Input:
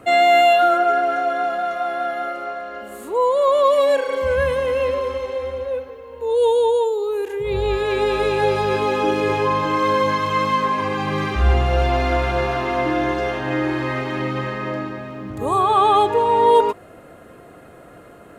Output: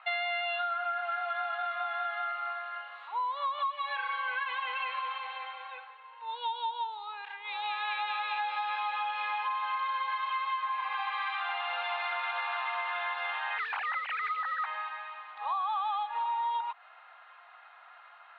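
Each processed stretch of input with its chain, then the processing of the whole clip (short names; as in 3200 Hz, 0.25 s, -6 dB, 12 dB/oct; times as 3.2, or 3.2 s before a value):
3.58–5.88 LPF 4700 Hz + comb 6.4 ms, depth 90%
13.58–14.66 sine-wave speech + modulation noise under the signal 16 dB
whole clip: Chebyshev band-pass 810–3900 Hz, order 4; compressor 10:1, threshold -27 dBFS; gain -2.5 dB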